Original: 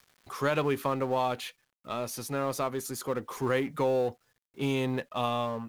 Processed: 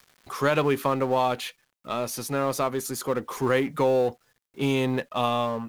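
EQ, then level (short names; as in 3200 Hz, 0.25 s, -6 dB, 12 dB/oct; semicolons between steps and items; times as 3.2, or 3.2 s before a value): bell 100 Hz -5 dB 0.4 oct; +5.0 dB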